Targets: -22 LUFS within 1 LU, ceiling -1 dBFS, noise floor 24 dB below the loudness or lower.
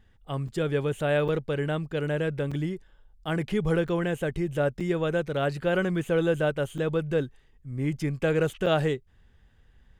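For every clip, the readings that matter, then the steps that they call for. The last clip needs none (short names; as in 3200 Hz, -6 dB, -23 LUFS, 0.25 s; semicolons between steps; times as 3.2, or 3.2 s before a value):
dropouts 7; longest dropout 5.5 ms; loudness -27.5 LUFS; peak -12.0 dBFS; loudness target -22.0 LUFS
-> interpolate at 0.48/1.28/2.51/3.88/4.8/6.78/8.66, 5.5 ms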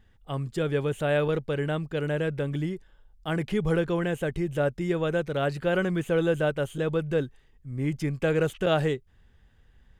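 dropouts 0; loudness -27.5 LUFS; peak -12.0 dBFS; loudness target -22.0 LUFS
-> gain +5.5 dB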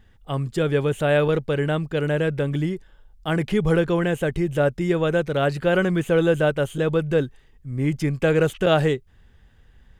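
loudness -22.0 LUFS; peak -6.5 dBFS; noise floor -55 dBFS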